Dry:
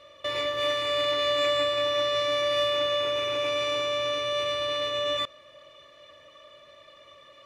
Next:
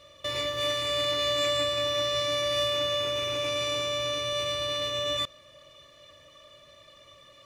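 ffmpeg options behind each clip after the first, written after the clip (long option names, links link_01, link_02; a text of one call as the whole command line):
ffmpeg -i in.wav -af "bass=frequency=250:gain=10,treble=frequency=4000:gain=11,volume=-3.5dB" out.wav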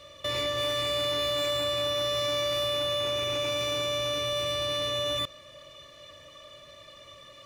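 ffmpeg -i in.wav -filter_complex "[0:a]acrossover=split=480|3200[link_01][link_02][link_03];[link_01]asoftclip=type=hard:threshold=-39dB[link_04];[link_02]alimiter=level_in=7dB:limit=-24dB:level=0:latency=1,volume=-7dB[link_05];[link_03]asoftclip=type=tanh:threshold=-38dB[link_06];[link_04][link_05][link_06]amix=inputs=3:normalize=0,volume=4dB" out.wav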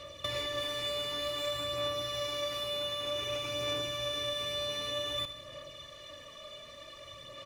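ffmpeg -i in.wav -af "acompressor=threshold=-33dB:ratio=6,aphaser=in_gain=1:out_gain=1:delay=4.9:decay=0.35:speed=0.54:type=sinusoidal,aecho=1:1:78|156|234|312|390:0.237|0.123|0.0641|0.0333|0.0173" out.wav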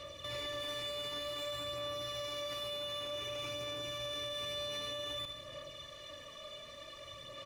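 ffmpeg -i in.wav -af "alimiter=level_in=8dB:limit=-24dB:level=0:latency=1,volume=-8dB,volume=-1dB" out.wav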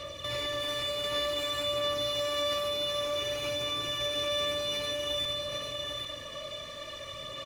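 ffmpeg -i in.wav -af "aecho=1:1:796:0.596,volume=7dB" out.wav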